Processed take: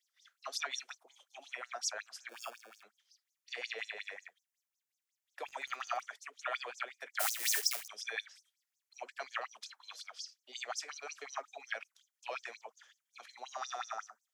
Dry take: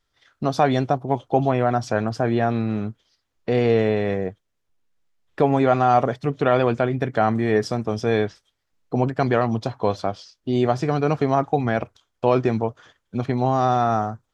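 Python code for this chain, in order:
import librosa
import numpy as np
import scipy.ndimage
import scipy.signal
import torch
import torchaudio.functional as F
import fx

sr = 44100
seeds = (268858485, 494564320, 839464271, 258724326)

y = fx.block_float(x, sr, bits=3, at=(7.19, 7.86), fade=0.02)
y = np.diff(y, prepend=0.0)
y = fx.sample_hold(y, sr, seeds[0], rate_hz=2000.0, jitter_pct=0, at=(2.29, 2.83))
y = fx.graphic_eq(y, sr, hz=(500, 1000, 2000, 4000), db=(-11, -3, 4, -4))
y = fx.filter_lfo_highpass(y, sr, shape='sine', hz=5.5, low_hz=460.0, high_hz=6500.0, q=6.1)
y = scipy.signal.sosfilt(scipy.signal.butter(16, 180.0, 'highpass', fs=sr, output='sos'), y)
y = fx.dmg_crackle(y, sr, seeds[1], per_s=66.0, level_db=-43.0, at=(5.45, 6.01), fade=0.02)
y = F.gain(torch.from_numpy(y), -3.5).numpy()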